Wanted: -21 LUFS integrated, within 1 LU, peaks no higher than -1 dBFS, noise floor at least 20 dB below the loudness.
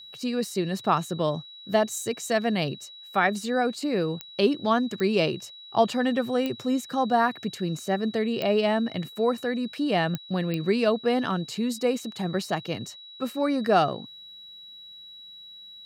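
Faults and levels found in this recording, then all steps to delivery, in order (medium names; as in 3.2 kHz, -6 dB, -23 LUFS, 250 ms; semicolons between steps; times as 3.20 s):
clicks found 6; steady tone 3.9 kHz; tone level -43 dBFS; loudness -26.5 LUFS; peak level -9.0 dBFS; loudness target -21.0 LUFS
-> de-click; band-stop 3.9 kHz, Q 30; trim +5.5 dB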